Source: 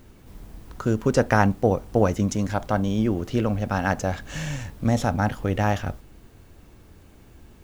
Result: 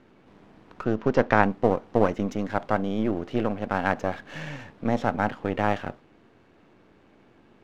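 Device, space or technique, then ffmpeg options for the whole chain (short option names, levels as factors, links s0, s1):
crystal radio: -filter_complex "[0:a]highpass=210,lowpass=2800,aeval=exprs='if(lt(val(0),0),0.447*val(0),val(0))':c=same,asplit=3[s0][s1][s2];[s0]afade=t=out:st=0.83:d=0.02[s3];[s1]lowpass=f=6600:w=0.5412,lowpass=f=6600:w=1.3066,afade=t=in:st=0.83:d=0.02,afade=t=out:st=1.41:d=0.02[s4];[s2]afade=t=in:st=1.41:d=0.02[s5];[s3][s4][s5]amix=inputs=3:normalize=0,volume=1.19"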